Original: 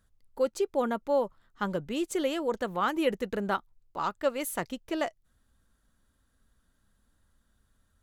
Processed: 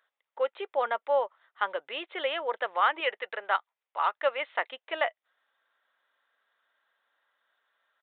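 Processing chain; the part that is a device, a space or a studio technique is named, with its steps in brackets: 3.00–4.00 s: peaking EQ 100 Hz -13.5 dB 2.9 oct; musical greeting card (resampled via 8 kHz; high-pass 580 Hz 24 dB/octave; peaking EQ 2 kHz +5 dB 0.48 oct); trim +4 dB

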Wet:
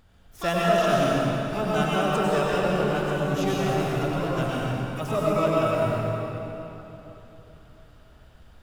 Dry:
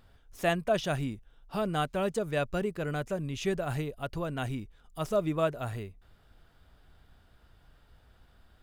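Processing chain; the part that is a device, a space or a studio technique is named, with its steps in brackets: shimmer-style reverb (harmony voices +12 st -8 dB; reverberation RT60 3.5 s, pre-delay 89 ms, DRR -6 dB)

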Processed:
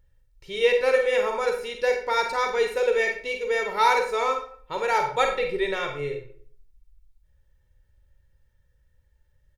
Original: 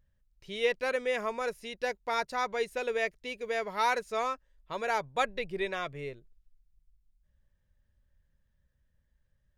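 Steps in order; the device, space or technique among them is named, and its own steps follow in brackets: microphone above a desk (comb 2.2 ms, depth 60%; reverberation RT60 0.55 s, pre-delay 33 ms, DRR 3 dB); trim +4 dB

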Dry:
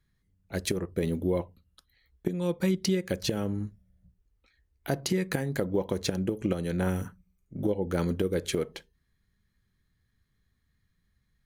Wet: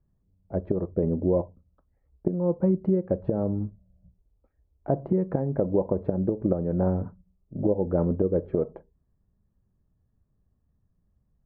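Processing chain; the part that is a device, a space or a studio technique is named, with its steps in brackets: under water (low-pass 950 Hz 24 dB/octave; peaking EQ 610 Hz +6.5 dB 0.26 oct); trim +3.5 dB

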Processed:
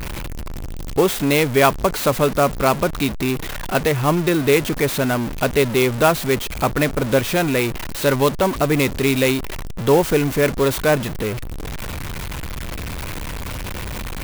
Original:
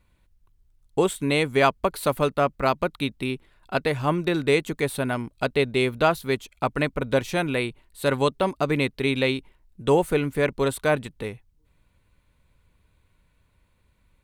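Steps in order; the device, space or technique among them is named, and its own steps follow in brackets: early CD player with a faulty converter (jump at every zero crossing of -25 dBFS; sampling jitter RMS 0.032 ms); trim +3.5 dB

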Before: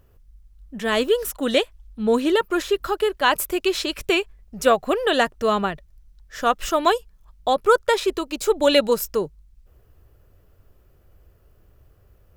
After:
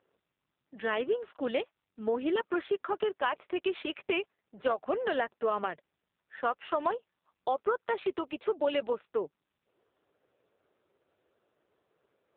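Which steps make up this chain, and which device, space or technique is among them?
voicemail (band-pass 340–2800 Hz; compression 6:1, threshold -20 dBFS, peak gain reduction 9 dB; trim -4.5 dB; AMR-NB 5.9 kbps 8 kHz)

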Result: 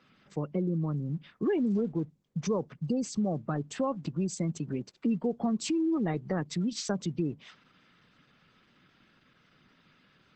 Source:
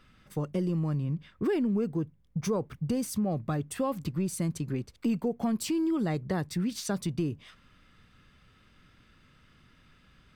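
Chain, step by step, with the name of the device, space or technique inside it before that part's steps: noise-suppressed video call (high-pass 140 Hz 24 dB/octave; spectral gate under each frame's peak -30 dB strong; Opus 12 kbps 48 kHz)

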